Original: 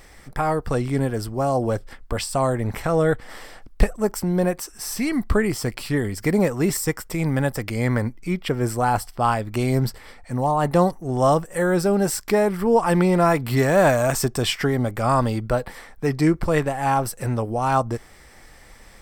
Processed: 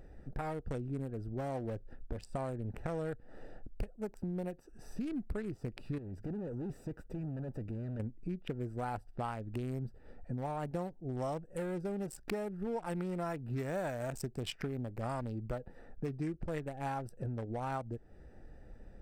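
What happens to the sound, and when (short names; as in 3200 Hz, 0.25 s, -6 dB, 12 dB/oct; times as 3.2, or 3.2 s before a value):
5.98–8 tube stage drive 29 dB, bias 0.5
whole clip: Wiener smoothing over 41 samples; dynamic EQ 1100 Hz, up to -6 dB, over -45 dBFS, Q 7.9; compressor 5:1, threshold -34 dBFS; gain -2.5 dB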